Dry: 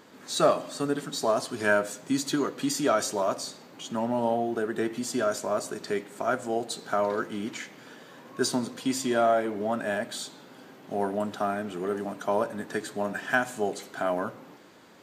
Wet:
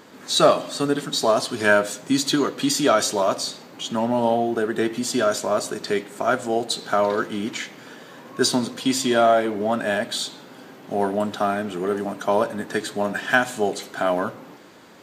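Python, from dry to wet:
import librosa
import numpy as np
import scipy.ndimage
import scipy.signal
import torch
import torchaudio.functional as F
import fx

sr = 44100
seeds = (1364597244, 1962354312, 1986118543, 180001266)

y = fx.dynamic_eq(x, sr, hz=3600.0, q=1.6, threshold_db=-48.0, ratio=4.0, max_db=6)
y = y * 10.0 ** (6.0 / 20.0)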